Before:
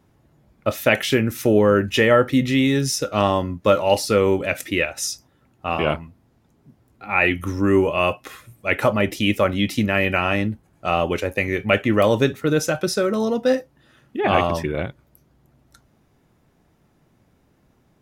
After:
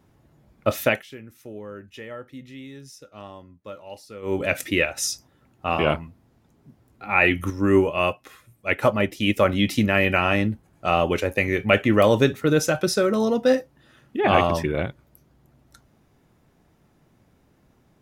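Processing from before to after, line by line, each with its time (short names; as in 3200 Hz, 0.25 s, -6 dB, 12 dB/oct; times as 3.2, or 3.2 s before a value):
0.82–4.43 dip -22 dB, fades 0.21 s
7.5–9.37 upward expander, over -30 dBFS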